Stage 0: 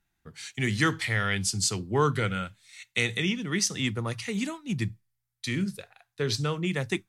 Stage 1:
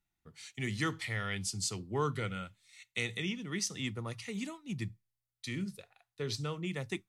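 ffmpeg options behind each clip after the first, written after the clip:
-af "bandreject=f=1.6k:w=7.9,volume=-8.5dB"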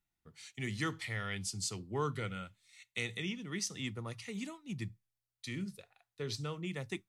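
-af "asoftclip=type=hard:threshold=-20dB,volume=-2.5dB"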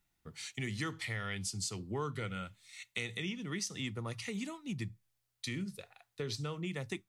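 -af "acompressor=threshold=-47dB:ratio=2.5,volume=8dB"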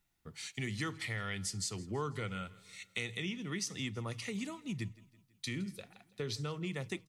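-af "aecho=1:1:164|328|492|656:0.0841|0.0446|0.0236|0.0125"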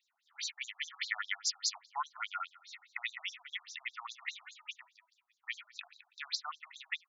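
-af "afftfilt=real='re*between(b*sr/1024,900*pow(5400/900,0.5+0.5*sin(2*PI*4.9*pts/sr))/1.41,900*pow(5400/900,0.5+0.5*sin(2*PI*4.9*pts/sr))*1.41)':imag='im*between(b*sr/1024,900*pow(5400/900,0.5+0.5*sin(2*PI*4.9*pts/sr))/1.41,900*pow(5400/900,0.5+0.5*sin(2*PI*4.9*pts/sr))*1.41)':win_size=1024:overlap=0.75,volume=9dB"

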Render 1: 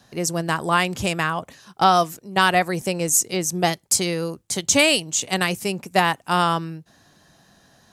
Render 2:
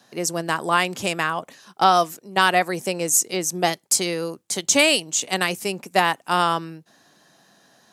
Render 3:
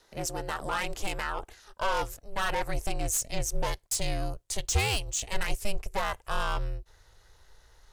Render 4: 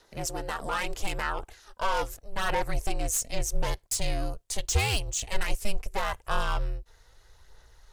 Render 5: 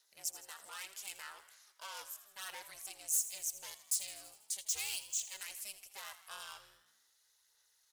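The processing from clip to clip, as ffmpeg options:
-af "highpass=220"
-af "asoftclip=type=tanh:threshold=-17.5dB,aeval=exprs='val(0)*sin(2*PI*200*n/s)':c=same,asubboost=boost=10.5:cutoff=73,volume=-3.5dB"
-af "aphaser=in_gain=1:out_gain=1:delay=4.4:decay=0.31:speed=0.79:type=sinusoidal"
-filter_complex "[0:a]aderivative,asplit=2[a][b];[b]asplit=7[c][d][e][f][g][h][i];[c]adelay=81,afreqshift=64,volume=-14dB[j];[d]adelay=162,afreqshift=128,volume=-18dB[k];[e]adelay=243,afreqshift=192,volume=-22dB[l];[f]adelay=324,afreqshift=256,volume=-26dB[m];[g]adelay=405,afreqshift=320,volume=-30.1dB[n];[h]adelay=486,afreqshift=384,volume=-34.1dB[o];[i]adelay=567,afreqshift=448,volume=-38.1dB[p];[j][k][l][m][n][o][p]amix=inputs=7:normalize=0[q];[a][q]amix=inputs=2:normalize=0,volume=-4.5dB"

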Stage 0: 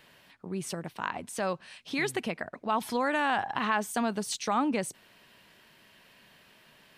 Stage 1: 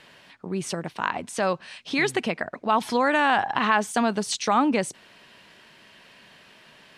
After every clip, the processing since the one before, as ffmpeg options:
-af "lowpass=8.3k,lowshelf=f=120:g=-5.5,volume=7dB"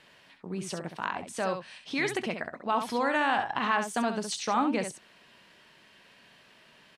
-af "aecho=1:1:22|67:0.168|0.422,volume=-6.5dB"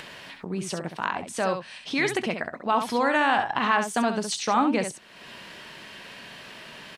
-af "acompressor=mode=upward:threshold=-37dB:ratio=2.5,volume=4.5dB"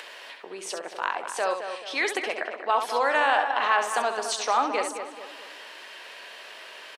-filter_complex "[0:a]highpass=f=410:w=0.5412,highpass=f=410:w=1.3066,asplit=2[a][b];[b]adelay=216,lowpass=f=2.4k:p=1,volume=-8dB,asplit=2[c][d];[d]adelay=216,lowpass=f=2.4k:p=1,volume=0.45,asplit=2[e][f];[f]adelay=216,lowpass=f=2.4k:p=1,volume=0.45,asplit=2[g][h];[h]adelay=216,lowpass=f=2.4k:p=1,volume=0.45,asplit=2[i][j];[j]adelay=216,lowpass=f=2.4k:p=1,volume=0.45[k];[a][c][e][g][i][k]amix=inputs=6:normalize=0"

